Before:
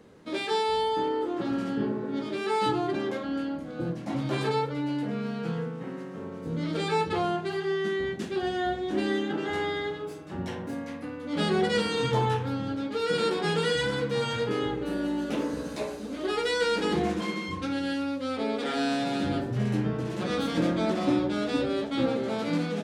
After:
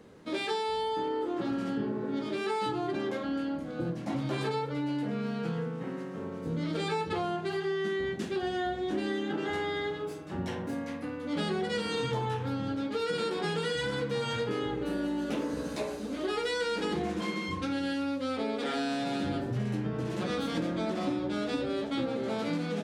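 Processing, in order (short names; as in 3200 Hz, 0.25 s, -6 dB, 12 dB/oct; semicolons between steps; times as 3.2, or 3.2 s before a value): compressor, threshold -28 dBFS, peak gain reduction 8 dB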